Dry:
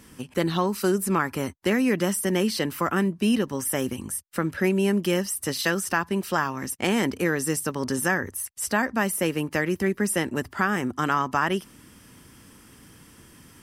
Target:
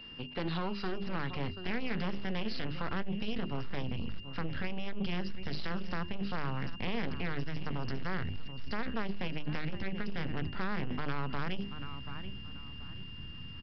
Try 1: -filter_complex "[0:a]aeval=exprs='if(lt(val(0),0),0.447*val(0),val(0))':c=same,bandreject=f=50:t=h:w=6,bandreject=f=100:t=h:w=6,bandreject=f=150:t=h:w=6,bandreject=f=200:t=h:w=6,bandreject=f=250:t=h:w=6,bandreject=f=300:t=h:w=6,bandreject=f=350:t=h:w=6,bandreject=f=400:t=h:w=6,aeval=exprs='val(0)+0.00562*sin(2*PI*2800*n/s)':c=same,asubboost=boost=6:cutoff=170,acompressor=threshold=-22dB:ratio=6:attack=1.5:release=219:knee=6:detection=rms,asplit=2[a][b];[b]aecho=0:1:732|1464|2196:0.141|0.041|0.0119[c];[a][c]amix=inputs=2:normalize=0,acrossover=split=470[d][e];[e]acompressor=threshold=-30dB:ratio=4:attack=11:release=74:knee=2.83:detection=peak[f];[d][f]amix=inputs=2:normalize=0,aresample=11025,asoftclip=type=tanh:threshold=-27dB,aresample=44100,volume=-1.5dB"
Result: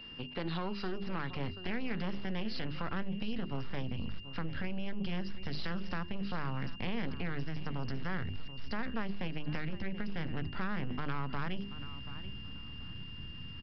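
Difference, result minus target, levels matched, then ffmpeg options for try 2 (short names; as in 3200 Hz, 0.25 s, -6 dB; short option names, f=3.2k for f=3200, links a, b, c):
compressor: peak gain reduction +6 dB
-filter_complex "[0:a]aeval=exprs='if(lt(val(0),0),0.447*val(0),val(0))':c=same,bandreject=f=50:t=h:w=6,bandreject=f=100:t=h:w=6,bandreject=f=150:t=h:w=6,bandreject=f=200:t=h:w=6,bandreject=f=250:t=h:w=6,bandreject=f=300:t=h:w=6,bandreject=f=350:t=h:w=6,bandreject=f=400:t=h:w=6,aeval=exprs='val(0)+0.00562*sin(2*PI*2800*n/s)':c=same,asubboost=boost=6:cutoff=170,acompressor=threshold=-14.5dB:ratio=6:attack=1.5:release=219:knee=6:detection=rms,asplit=2[a][b];[b]aecho=0:1:732|1464|2196:0.141|0.041|0.0119[c];[a][c]amix=inputs=2:normalize=0,acrossover=split=470[d][e];[e]acompressor=threshold=-30dB:ratio=4:attack=11:release=74:knee=2.83:detection=peak[f];[d][f]amix=inputs=2:normalize=0,aresample=11025,asoftclip=type=tanh:threshold=-27dB,aresample=44100,volume=-1.5dB"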